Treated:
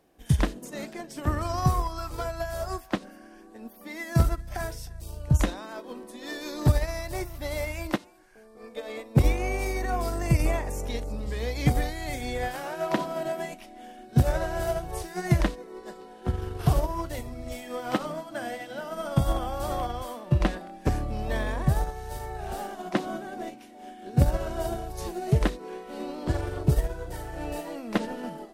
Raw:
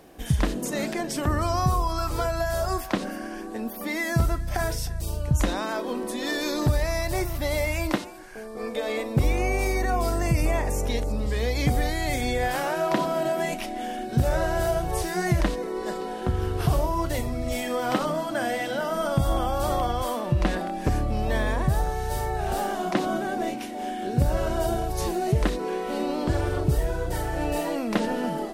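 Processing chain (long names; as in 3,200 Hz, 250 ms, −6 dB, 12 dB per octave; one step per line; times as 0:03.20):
in parallel at −5 dB: soft clipping −26 dBFS, distortion −9 dB
on the sum: expander for the loud parts 2.5 to 1, over −29 dBFS
level +2.5 dB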